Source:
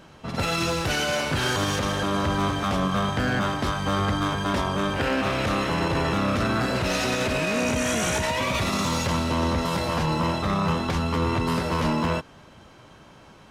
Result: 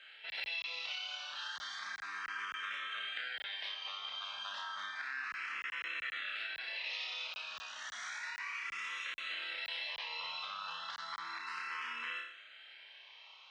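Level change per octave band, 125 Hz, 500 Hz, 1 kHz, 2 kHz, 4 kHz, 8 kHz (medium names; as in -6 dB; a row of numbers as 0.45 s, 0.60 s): under -40 dB, -34.0 dB, -19.0 dB, -10.0 dB, -10.0 dB, -22.5 dB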